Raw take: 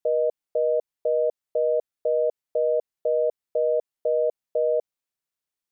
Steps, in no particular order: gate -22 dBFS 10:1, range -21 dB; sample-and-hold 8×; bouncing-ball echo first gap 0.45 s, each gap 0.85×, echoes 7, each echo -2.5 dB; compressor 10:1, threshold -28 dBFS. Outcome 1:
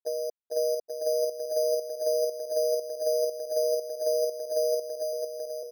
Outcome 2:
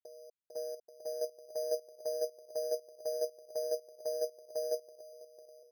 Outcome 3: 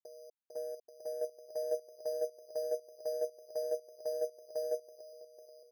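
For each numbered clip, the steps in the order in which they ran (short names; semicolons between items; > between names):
gate > compressor > bouncing-ball echo > sample-and-hold; compressor > bouncing-ball echo > sample-and-hold > gate; sample-and-hold > compressor > bouncing-ball echo > gate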